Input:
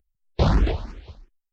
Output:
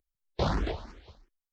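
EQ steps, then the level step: low shelf 240 Hz -8.5 dB; bell 2600 Hz -4 dB 0.36 oct; -4.0 dB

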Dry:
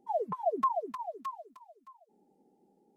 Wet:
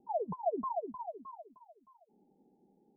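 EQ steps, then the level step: Chebyshev low-pass 1000 Hz, order 6; low shelf 230 Hz +9.5 dB; -3.5 dB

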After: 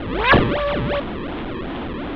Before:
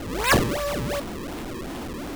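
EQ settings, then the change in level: elliptic low-pass 3500 Hz, stop band 70 dB; +6.5 dB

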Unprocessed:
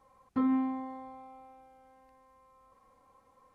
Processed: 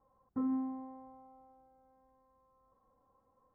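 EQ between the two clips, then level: running mean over 17 samples; air absorption 490 m; -5.0 dB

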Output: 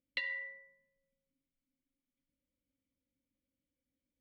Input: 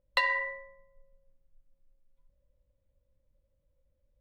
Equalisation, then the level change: dynamic EQ 1600 Hz, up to -5 dB, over -43 dBFS, Q 1.8; vowel filter i; +7.5 dB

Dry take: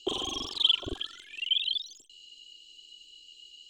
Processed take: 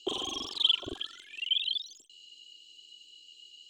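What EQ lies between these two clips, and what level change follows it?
low shelf 82 Hz -11 dB; -1.5 dB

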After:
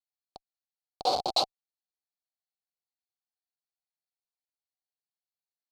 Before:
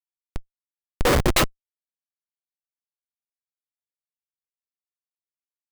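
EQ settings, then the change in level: double band-pass 1800 Hz, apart 2.5 oct; +4.5 dB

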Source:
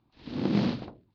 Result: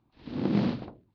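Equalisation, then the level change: high shelf 3900 Hz -9 dB; 0.0 dB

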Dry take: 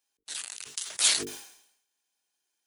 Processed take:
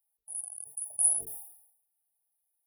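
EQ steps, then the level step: brick-wall FIR band-stop 880–9400 Hz; passive tone stack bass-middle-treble 10-0-10; +7.0 dB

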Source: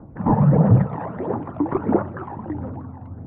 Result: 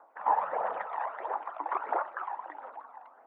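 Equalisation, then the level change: HPF 750 Hz 24 dB/oct; 0.0 dB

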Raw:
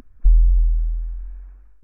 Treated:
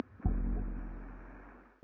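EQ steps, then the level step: HPF 110 Hz 24 dB/oct; air absorption 200 m; +12.0 dB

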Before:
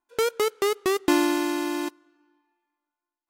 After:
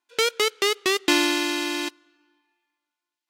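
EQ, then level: weighting filter D; -1.0 dB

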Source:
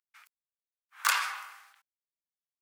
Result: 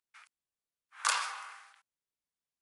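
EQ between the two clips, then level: dynamic EQ 1900 Hz, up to -7 dB, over -42 dBFS, Q 0.91; brick-wall FIR low-pass 11000 Hz; low shelf 500 Hz +5.5 dB; 0.0 dB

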